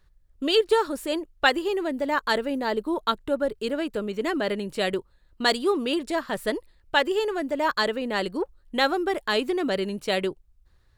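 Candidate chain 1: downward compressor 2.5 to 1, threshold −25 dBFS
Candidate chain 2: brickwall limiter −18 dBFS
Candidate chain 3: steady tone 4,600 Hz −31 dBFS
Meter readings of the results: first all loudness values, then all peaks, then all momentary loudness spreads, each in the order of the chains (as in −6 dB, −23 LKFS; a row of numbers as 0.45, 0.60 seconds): −29.5, −29.0, −25.0 LKFS; −13.0, −18.0, −5.5 dBFS; 4, 5, 5 LU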